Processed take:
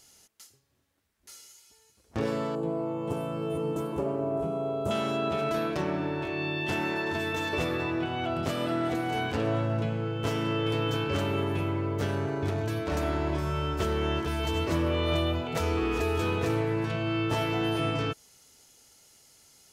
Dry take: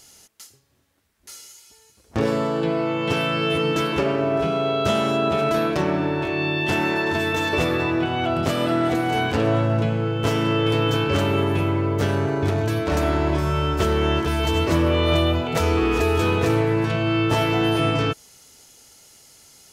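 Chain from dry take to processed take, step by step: 2.55–4.91 s: high-order bell 2.9 kHz -15.5 dB 2.3 oct; trim -8 dB

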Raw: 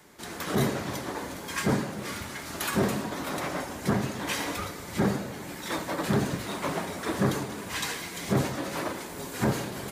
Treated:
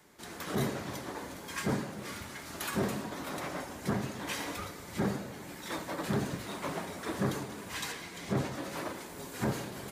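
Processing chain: 7.92–8.52 s: treble shelf 8.4 kHz -8.5 dB; trim -6 dB

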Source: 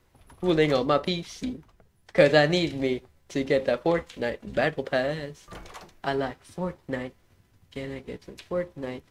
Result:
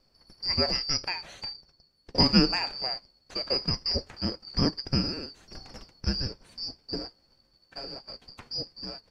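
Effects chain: four frequency bands reordered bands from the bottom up 2341; tilt EQ -3 dB/octave

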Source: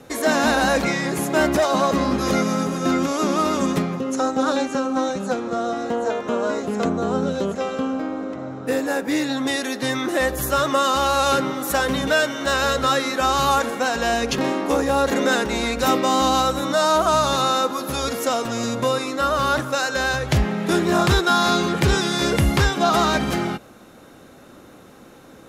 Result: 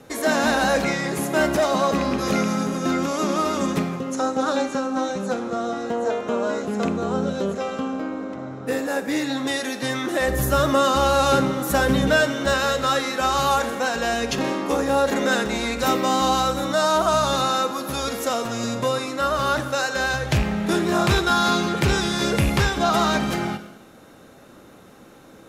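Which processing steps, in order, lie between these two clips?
rattle on loud lows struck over -18 dBFS, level -17 dBFS; 10.28–12.53 s: bass shelf 330 Hz +9.5 dB; gated-style reverb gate 360 ms falling, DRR 9.5 dB; trim -2 dB

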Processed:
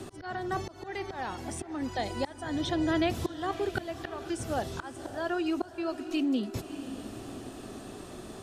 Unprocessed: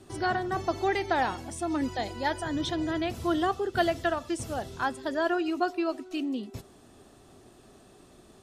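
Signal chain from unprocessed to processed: slow attack 740 ms; echo that smears into a reverb 585 ms, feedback 42%, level -15 dB; three bands compressed up and down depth 40%; trim +5 dB

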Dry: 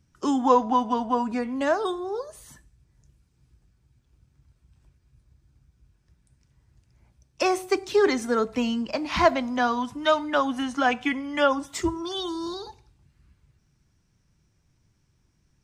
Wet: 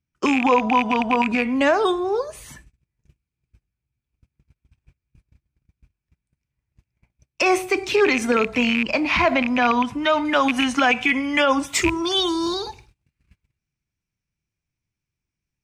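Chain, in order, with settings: rattle on loud lows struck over -31 dBFS, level -21 dBFS; gate -55 dBFS, range -26 dB; peaking EQ 2.4 kHz +11 dB 0.51 oct; peak limiter -17 dBFS, peak gain reduction 11.5 dB; treble shelf 4.4 kHz -3 dB, from 9.00 s -8 dB, from 10.25 s +3.5 dB; trim +8 dB

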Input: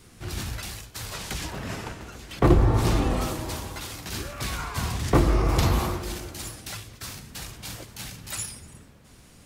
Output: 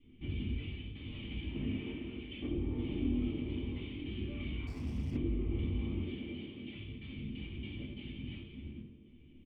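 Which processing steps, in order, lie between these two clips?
gate -45 dBFS, range -10 dB; 1.76–3.00 s: bass shelf 220 Hz -8.5 dB; 6.02–6.75 s: high-pass 130 Hz 12 dB/octave; treble shelf 2.3 kHz +8 dB; compression, threshold -32 dBFS, peak gain reduction 17 dB; saturation -31.5 dBFS, distortion -14 dB; cascade formant filter i; frequency-shifting echo 89 ms, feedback 46%, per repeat +36 Hz, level -8.5 dB; reverberation RT60 0.30 s, pre-delay 3 ms, DRR -6 dB; 4.67–5.17 s: sliding maximum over 9 samples; trim +1.5 dB

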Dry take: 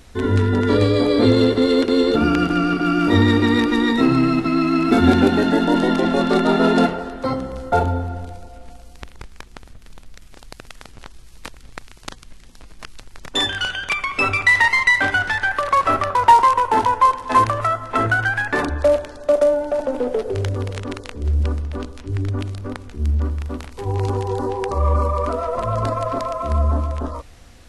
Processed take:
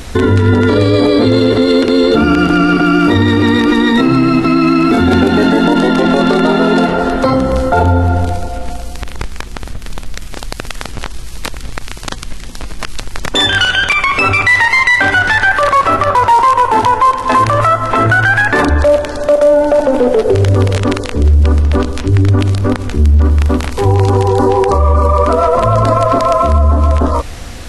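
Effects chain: compression 2:1, threshold -27 dBFS, peak gain reduction 11 dB; loudness maximiser +19.5 dB; trim -1 dB

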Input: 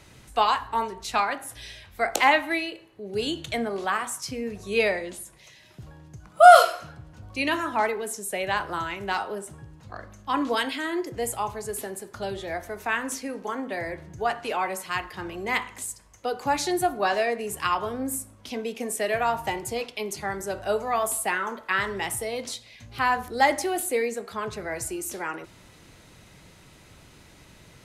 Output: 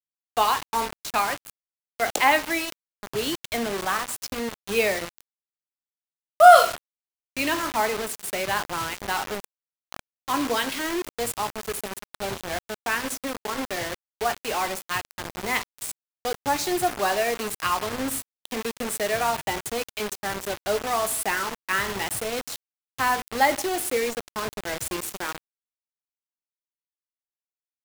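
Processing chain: bit crusher 5-bit

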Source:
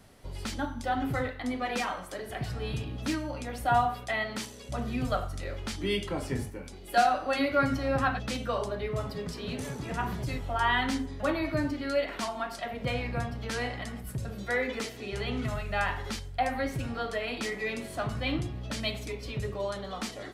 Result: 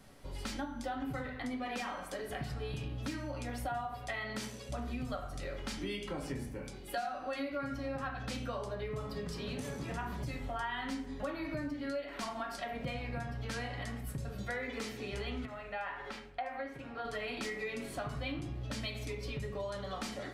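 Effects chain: on a send at -4.5 dB: reverberation RT60 0.50 s, pre-delay 4 ms; on the sum: compression 6:1, threshold -33 dBFS, peak gain reduction 15 dB; 15.45–17.05 s: tone controls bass -13 dB, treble -14 dB; trim -2.5 dB

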